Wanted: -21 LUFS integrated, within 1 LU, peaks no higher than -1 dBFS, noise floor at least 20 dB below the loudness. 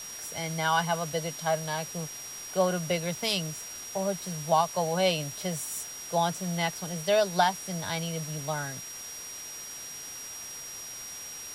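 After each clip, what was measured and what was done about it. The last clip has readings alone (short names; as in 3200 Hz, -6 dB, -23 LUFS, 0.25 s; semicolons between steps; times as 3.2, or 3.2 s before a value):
steady tone 5700 Hz; tone level -40 dBFS; noise floor -41 dBFS; noise floor target -51 dBFS; loudness -30.5 LUFS; peak -11.5 dBFS; loudness target -21.0 LUFS
-> notch 5700 Hz, Q 30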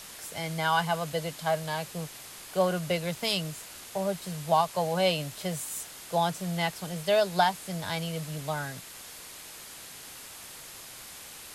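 steady tone none; noise floor -46 dBFS; noise floor target -50 dBFS
-> denoiser 6 dB, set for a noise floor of -46 dBFS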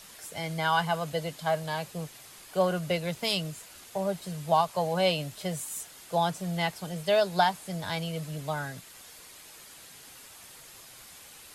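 noise floor -50 dBFS; loudness -30.0 LUFS; peak -12.0 dBFS; loudness target -21.0 LUFS
-> gain +9 dB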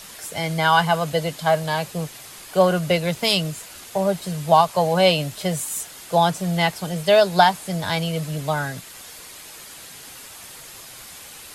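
loudness -21.0 LUFS; peak -3.0 dBFS; noise floor -41 dBFS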